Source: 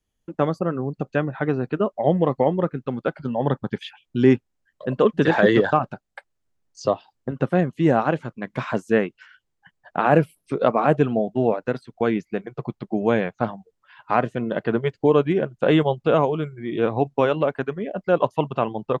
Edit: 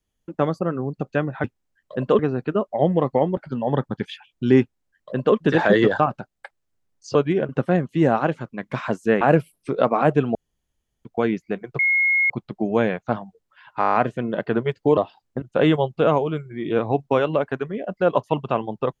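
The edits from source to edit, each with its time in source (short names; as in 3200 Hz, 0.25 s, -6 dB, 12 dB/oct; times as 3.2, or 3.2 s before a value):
2.62–3.1 cut
4.34–5.09 copy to 1.44
6.88–7.33 swap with 15.15–15.49
9.05–10.04 cut
11.18–11.88 room tone
12.62 add tone 2160 Hz -15.5 dBFS 0.51 s
14.12 stutter 0.02 s, 8 plays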